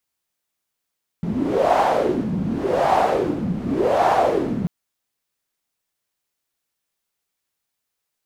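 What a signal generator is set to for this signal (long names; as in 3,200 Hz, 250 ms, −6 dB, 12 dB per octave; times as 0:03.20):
wind from filtered noise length 3.44 s, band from 190 Hz, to 780 Hz, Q 4.6, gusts 3, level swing 7 dB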